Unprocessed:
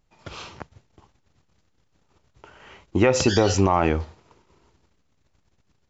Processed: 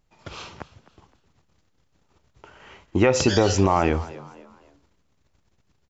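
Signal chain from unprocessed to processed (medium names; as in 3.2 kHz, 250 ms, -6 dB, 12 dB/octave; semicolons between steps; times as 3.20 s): frequency-shifting echo 258 ms, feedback 38%, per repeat +68 Hz, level -18.5 dB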